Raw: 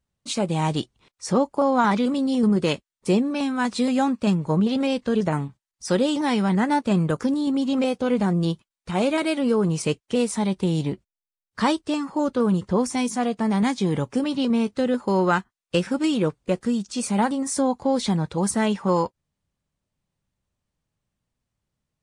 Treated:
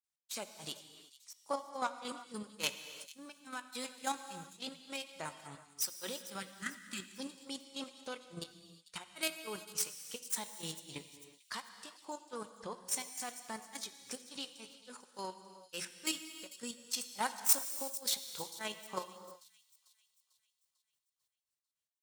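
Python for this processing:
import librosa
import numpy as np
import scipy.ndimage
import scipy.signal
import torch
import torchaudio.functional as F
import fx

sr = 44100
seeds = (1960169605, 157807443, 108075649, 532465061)

y = fx.tracing_dist(x, sr, depth_ms=0.079)
y = fx.riaa(y, sr, side='recording')
y = fx.spec_repair(y, sr, seeds[0], start_s=6.5, length_s=0.64, low_hz=390.0, high_hz=1200.0, source='after')
y = fx.peak_eq(y, sr, hz=270.0, db=-7.5, octaves=2.7)
y = fx.hum_notches(y, sr, base_hz=60, count=3)
y = fx.granulator(y, sr, seeds[1], grain_ms=200.0, per_s=3.5, spray_ms=100.0, spread_st=0)
y = fx.level_steps(y, sr, step_db=9)
y = fx.echo_wet_highpass(y, sr, ms=446, feedback_pct=47, hz=3600.0, wet_db=-15.5)
y = fx.rev_gated(y, sr, seeds[2], gate_ms=390, shape='flat', drr_db=9.0)
y = F.gain(torch.from_numpy(y), -5.0).numpy()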